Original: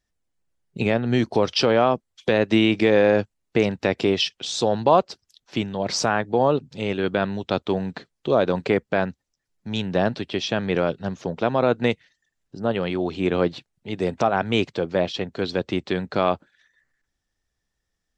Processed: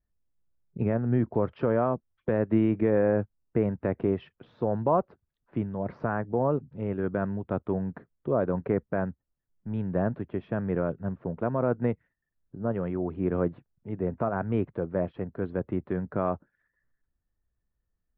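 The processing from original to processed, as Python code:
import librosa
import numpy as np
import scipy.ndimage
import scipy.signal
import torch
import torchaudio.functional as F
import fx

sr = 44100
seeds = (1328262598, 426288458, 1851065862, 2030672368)

y = scipy.signal.sosfilt(scipy.signal.butter(4, 1600.0, 'lowpass', fs=sr, output='sos'), x)
y = fx.low_shelf(y, sr, hz=180.0, db=10.0)
y = fx.notch(y, sr, hz=790.0, q=12.0)
y = F.gain(torch.from_numpy(y), -8.0).numpy()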